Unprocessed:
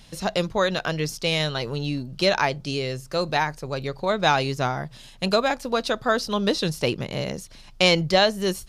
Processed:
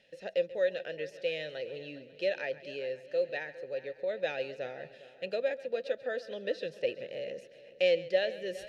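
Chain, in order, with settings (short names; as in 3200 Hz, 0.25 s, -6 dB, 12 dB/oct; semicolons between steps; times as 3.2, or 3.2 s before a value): vowel filter e; reverse; upward compressor, threshold -40 dBFS; reverse; dynamic EQ 930 Hz, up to -4 dB, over -41 dBFS, Q 0.87; multi-head echo 0.136 s, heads first and third, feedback 46%, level -17.5 dB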